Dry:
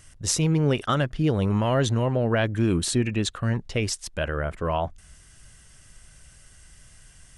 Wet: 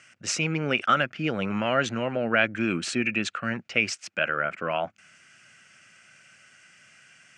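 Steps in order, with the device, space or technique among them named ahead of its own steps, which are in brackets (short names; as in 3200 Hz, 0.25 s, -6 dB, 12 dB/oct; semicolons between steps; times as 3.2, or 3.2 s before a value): television speaker (speaker cabinet 210–8900 Hz, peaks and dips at 290 Hz -5 dB, 420 Hz -7 dB, 980 Hz -7 dB, 1400 Hz +9 dB, 2400 Hz +6 dB, 3700 Hz -7 dB); fifteen-band EQ 100 Hz +10 dB, 2500 Hz +6 dB, 10000 Hz -12 dB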